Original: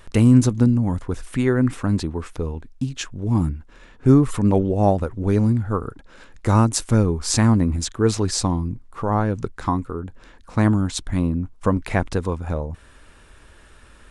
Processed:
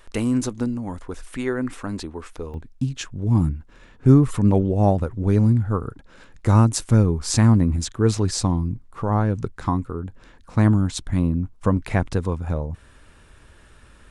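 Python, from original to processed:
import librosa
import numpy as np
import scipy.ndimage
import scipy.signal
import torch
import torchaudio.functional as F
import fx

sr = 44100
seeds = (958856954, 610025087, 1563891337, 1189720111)

y = fx.peak_eq(x, sr, hz=120.0, db=fx.steps((0.0, -11.0), (2.54, 5.0)), octaves=1.7)
y = y * 10.0 ** (-2.5 / 20.0)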